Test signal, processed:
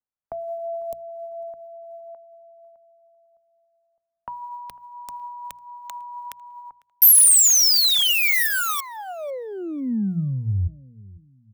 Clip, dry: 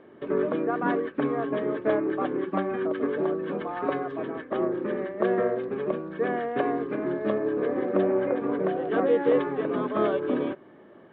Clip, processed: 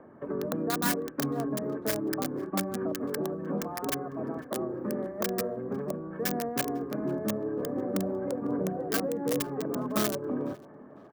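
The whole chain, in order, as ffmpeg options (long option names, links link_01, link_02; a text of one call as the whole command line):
ffmpeg -i in.wav -filter_complex "[0:a]acrossover=split=200|470|1500[link_01][link_02][link_03][link_04];[link_02]alimiter=level_in=1dB:limit=-24dB:level=0:latency=1:release=129,volume=-1dB[link_05];[link_03]acompressor=threshold=-41dB:ratio=6[link_06];[link_04]acrusher=bits=5:mix=0:aa=0.000001[link_07];[link_01][link_05][link_06][link_07]amix=inputs=4:normalize=0,equalizer=frequency=380:width_type=o:width=0.77:gain=-9,aphaser=in_gain=1:out_gain=1:delay=2.6:decay=0.21:speed=1.4:type=sinusoidal,aemphasis=mode=production:type=50kf,bandreject=frequency=60:width_type=h:width=6,bandreject=frequency=120:width_type=h:width=6,bandreject=frequency=180:width_type=h:width=6,asplit=2[link_08][link_09];[link_09]adelay=500,lowpass=frequency=2600:poles=1,volume=-21dB,asplit=2[link_10][link_11];[link_11]adelay=500,lowpass=frequency=2600:poles=1,volume=0.36,asplit=2[link_12][link_13];[link_13]adelay=500,lowpass=frequency=2600:poles=1,volume=0.36[link_14];[link_08][link_10][link_12][link_14]amix=inputs=4:normalize=0,volume=3dB" out.wav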